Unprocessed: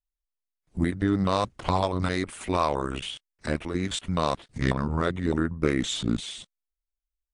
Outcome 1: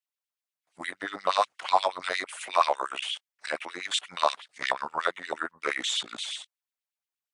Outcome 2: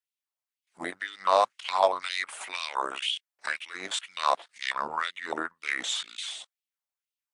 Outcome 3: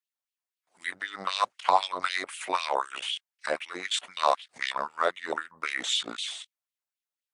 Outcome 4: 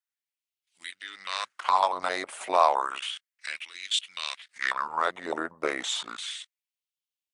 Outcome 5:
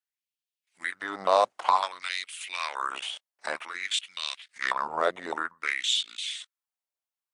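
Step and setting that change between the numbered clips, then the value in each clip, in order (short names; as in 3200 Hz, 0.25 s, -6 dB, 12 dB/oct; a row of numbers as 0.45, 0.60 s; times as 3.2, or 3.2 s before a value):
LFO high-pass, rate: 8.4, 2, 3.9, 0.32, 0.54 Hz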